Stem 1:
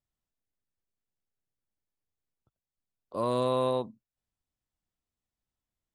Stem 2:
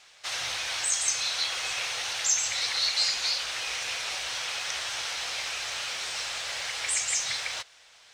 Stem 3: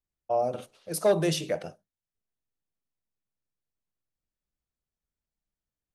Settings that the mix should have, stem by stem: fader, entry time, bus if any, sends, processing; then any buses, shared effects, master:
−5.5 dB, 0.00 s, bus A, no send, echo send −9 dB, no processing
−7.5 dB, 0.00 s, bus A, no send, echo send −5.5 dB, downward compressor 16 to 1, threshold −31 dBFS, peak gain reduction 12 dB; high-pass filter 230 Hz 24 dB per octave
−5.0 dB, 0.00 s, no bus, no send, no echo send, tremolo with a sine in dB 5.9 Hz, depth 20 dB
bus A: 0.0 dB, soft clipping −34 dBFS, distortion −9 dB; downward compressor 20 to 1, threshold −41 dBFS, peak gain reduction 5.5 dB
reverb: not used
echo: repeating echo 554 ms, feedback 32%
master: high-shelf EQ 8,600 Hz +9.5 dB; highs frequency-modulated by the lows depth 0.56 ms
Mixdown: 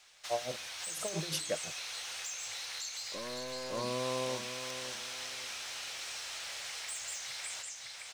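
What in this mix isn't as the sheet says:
stem 1 −5.5 dB → +0.5 dB
stem 2: missing high-pass filter 230 Hz 24 dB per octave
master: missing highs frequency-modulated by the lows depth 0.56 ms

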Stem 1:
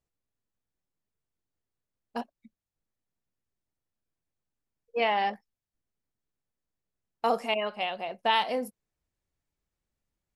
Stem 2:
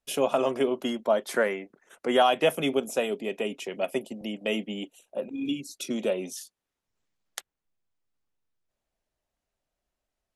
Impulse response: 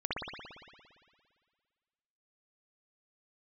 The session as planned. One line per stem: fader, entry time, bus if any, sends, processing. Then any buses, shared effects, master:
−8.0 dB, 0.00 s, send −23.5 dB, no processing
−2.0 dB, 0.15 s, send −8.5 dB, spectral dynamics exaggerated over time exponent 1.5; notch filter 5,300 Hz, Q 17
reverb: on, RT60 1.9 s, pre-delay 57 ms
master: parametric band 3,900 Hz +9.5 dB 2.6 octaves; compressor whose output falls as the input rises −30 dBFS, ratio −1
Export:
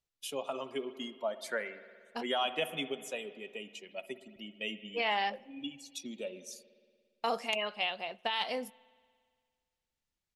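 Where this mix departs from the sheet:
stem 2 −2.0 dB → −12.5 dB
reverb return −10.0 dB

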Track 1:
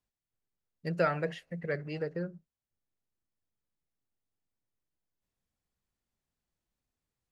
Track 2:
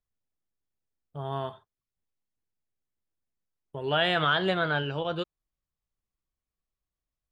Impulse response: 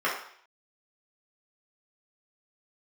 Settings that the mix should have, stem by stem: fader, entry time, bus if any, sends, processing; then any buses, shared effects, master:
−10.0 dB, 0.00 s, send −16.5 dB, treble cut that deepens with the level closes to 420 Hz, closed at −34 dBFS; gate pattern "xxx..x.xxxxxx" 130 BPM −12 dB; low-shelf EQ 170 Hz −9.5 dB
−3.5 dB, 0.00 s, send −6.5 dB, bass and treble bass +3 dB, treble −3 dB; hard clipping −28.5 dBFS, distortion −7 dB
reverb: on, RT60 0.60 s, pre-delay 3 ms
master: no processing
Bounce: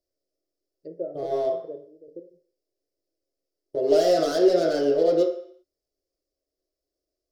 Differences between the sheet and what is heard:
stem 2: missing bass and treble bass +3 dB, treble −3 dB
master: extra drawn EQ curve 110 Hz 0 dB, 210 Hz −9 dB, 310 Hz +14 dB, 630 Hz +12 dB, 900 Hz −14 dB, 1,400 Hz −13 dB, 3,200 Hz −8 dB, 4,700 Hz +12 dB, 7,800 Hz +1 dB

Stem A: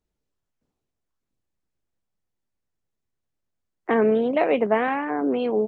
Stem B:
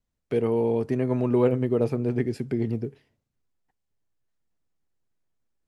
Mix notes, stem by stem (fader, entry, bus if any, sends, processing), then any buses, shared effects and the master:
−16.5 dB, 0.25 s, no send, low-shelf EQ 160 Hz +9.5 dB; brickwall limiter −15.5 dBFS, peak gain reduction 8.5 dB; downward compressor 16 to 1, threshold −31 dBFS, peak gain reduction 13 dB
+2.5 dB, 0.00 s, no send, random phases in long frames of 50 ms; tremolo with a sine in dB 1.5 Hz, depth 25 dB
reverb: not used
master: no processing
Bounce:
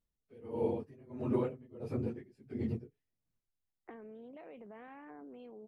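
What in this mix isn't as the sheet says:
stem A: entry 0.25 s → 0.00 s
stem B +2.5 dB → −7.0 dB

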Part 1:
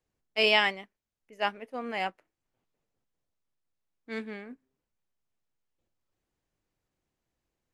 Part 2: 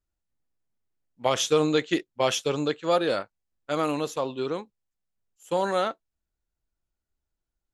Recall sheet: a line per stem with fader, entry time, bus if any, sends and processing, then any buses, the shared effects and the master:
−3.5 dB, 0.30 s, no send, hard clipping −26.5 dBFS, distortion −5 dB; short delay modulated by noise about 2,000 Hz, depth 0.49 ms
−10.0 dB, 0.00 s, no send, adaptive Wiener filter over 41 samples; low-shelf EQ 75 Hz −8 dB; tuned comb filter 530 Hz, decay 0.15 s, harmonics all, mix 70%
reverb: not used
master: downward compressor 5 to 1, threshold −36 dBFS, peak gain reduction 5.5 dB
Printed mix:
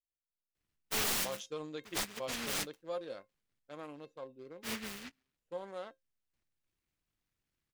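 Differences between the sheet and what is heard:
stem 1: entry 0.30 s → 0.55 s
master: missing downward compressor 5 to 1, threshold −36 dBFS, peak gain reduction 5.5 dB

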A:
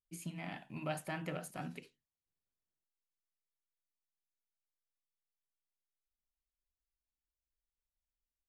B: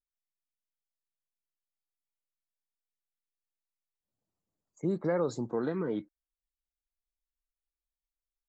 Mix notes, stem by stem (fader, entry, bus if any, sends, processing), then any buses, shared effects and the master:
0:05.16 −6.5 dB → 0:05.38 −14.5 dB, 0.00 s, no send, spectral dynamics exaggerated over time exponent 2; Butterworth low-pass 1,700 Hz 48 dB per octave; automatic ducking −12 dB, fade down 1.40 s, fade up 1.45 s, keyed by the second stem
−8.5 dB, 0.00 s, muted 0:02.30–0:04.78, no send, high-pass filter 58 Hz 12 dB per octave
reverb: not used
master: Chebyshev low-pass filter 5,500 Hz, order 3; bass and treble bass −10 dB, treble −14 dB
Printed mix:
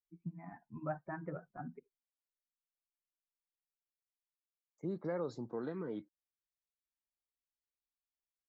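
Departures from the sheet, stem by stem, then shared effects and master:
stem A −6.5 dB → +2.5 dB
master: missing bass and treble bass −10 dB, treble −14 dB

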